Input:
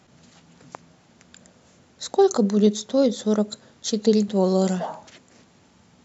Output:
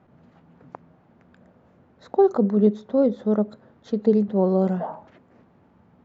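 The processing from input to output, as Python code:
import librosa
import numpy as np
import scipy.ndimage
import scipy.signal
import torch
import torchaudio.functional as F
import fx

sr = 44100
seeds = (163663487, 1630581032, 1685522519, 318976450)

y = scipy.signal.sosfilt(scipy.signal.butter(2, 1300.0, 'lowpass', fs=sr, output='sos'), x)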